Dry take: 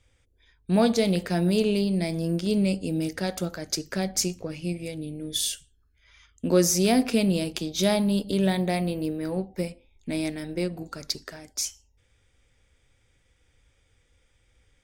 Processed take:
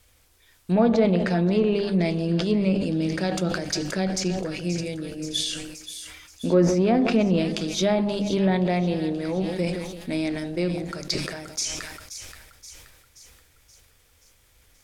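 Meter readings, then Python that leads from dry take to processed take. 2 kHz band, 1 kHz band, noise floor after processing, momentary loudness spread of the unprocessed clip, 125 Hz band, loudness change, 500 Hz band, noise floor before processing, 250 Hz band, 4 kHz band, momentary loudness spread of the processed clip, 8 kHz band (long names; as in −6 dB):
+3.0 dB, +3.0 dB, −60 dBFS, 12 LU, +3.0 dB, +2.0 dB, +3.0 dB, −66 dBFS, +2.0 dB, +1.0 dB, 16 LU, −3.0 dB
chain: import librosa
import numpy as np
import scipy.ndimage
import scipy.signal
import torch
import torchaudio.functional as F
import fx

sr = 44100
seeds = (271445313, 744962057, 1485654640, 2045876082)

p1 = np.clip(x, -10.0 ** (-20.5 / 20.0), 10.0 ** (-20.5 / 20.0))
p2 = x + (p1 * librosa.db_to_amplitude(-10.5))
p3 = fx.hum_notches(p2, sr, base_hz=50, count=6)
p4 = fx.dmg_noise_colour(p3, sr, seeds[0], colour='white', level_db=-63.0)
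p5 = p4 + fx.echo_split(p4, sr, split_hz=1000.0, low_ms=168, high_ms=527, feedback_pct=52, wet_db=-12.5, dry=0)
p6 = fx.env_lowpass_down(p5, sr, base_hz=1600.0, full_db=-15.5)
y = fx.sustainer(p6, sr, db_per_s=43.0)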